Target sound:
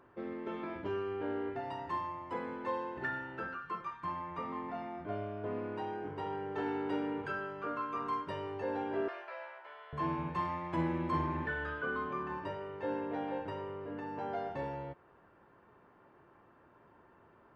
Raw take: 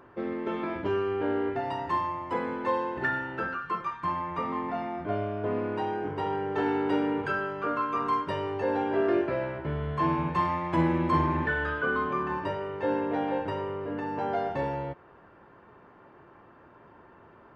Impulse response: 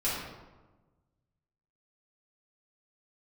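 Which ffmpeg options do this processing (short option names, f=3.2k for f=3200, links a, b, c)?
-filter_complex "[0:a]asettb=1/sr,asplit=3[a][b][c];[a]atrim=end=9.084[d];[b]atrim=start=9.08:end=9.93,asetpts=PTS-STARTPTS,afade=t=in:d=0.004:c=qsin,afade=t=out:st=0.846:d=0.004:c=qsin,highpass=f=710:w=0.5412,highpass=f=710:w=1.3066[e];[c]atrim=start=9.926[f];[d][e]acrossfade=d=0.004:c1=hsin:c2=qsin[g];[g][f]acrossfade=d=0.004:c1=qsin:c2=hsin,volume=-8.5dB"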